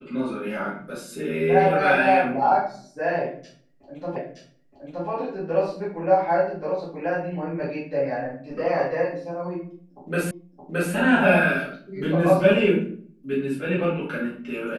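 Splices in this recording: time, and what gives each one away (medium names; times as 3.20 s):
4.16 s: repeat of the last 0.92 s
10.31 s: repeat of the last 0.62 s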